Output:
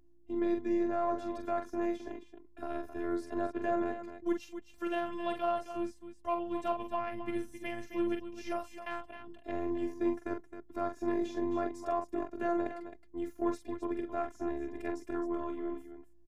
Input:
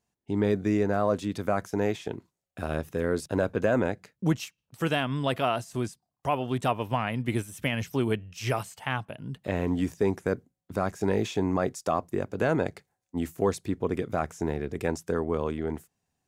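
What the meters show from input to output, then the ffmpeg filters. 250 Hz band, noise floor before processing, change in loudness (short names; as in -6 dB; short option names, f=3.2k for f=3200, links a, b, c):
-5.0 dB, -85 dBFS, -6.5 dB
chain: -af "highshelf=f=3.2k:g=-10,aeval=exprs='val(0)+0.00251*(sin(2*PI*60*n/s)+sin(2*PI*2*60*n/s)/2+sin(2*PI*3*60*n/s)/3+sin(2*PI*4*60*n/s)/4+sin(2*PI*5*60*n/s)/5)':c=same,aeval=exprs='0.224*(cos(1*acos(clip(val(0)/0.224,-1,1)))-cos(1*PI/2))+0.0141*(cos(3*acos(clip(val(0)/0.224,-1,1)))-cos(3*PI/2))':c=same,afftfilt=real='hypot(re,im)*cos(PI*b)':imag='0':win_size=512:overlap=0.75,aecho=1:1:43.73|265.3:0.501|0.316,volume=-3.5dB"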